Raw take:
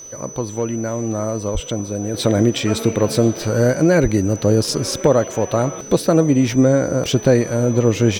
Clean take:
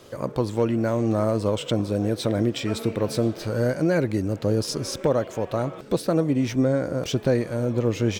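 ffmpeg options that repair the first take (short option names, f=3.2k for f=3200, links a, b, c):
-filter_complex "[0:a]bandreject=f=6k:w=30,asplit=3[a][b][c];[a]afade=t=out:st=1.53:d=0.02[d];[b]highpass=f=140:w=0.5412,highpass=f=140:w=1.3066,afade=t=in:st=1.53:d=0.02,afade=t=out:st=1.65:d=0.02[e];[c]afade=t=in:st=1.65:d=0.02[f];[d][e][f]amix=inputs=3:normalize=0,asplit=3[g][h][i];[g]afade=t=out:st=4.02:d=0.02[j];[h]highpass=f=140:w=0.5412,highpass=f=140:w=1.3066,afade=t=in:st=4.02:d=0.02,afade=t=out:st=4.14:d=0.02[k];[i]afade=t=in:st=4.14:d=0.02[l];[j][k][l]amix=inputs=3:normalize=0,agate=range=-21dB:threshold=-22dB,asetnsamples=n=441:p=0,asendcmd='2.14 volume volume -7.5dB',volume=0dB"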